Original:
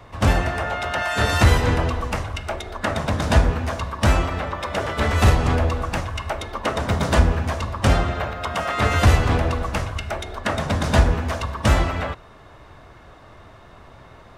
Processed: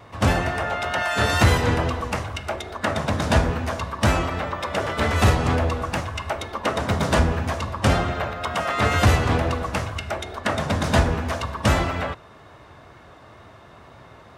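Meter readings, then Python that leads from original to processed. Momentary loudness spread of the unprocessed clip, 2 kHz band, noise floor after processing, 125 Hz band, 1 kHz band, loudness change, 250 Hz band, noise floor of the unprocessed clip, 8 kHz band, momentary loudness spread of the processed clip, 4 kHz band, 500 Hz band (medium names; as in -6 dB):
10 LU, 0.0 dB, -47 dBFS, -2.0 dB, 0.0 dB, -1.0 dB, 0.0 dB, -46 dBFS, 0.0 dB, 10 LU, 0.0 dB, 0.0 dB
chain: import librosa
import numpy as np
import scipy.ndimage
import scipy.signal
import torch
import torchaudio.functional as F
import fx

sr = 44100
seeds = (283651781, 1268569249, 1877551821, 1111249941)

y = scipy.signal.sosfilt(scipy.signal.butter(2, 78.0, 'highpass', fs=sr, output='sos'), x)
y = fx.wow_flutter(y, sr, seeds[0], rate_hz=2.1, depth_cents=20.0)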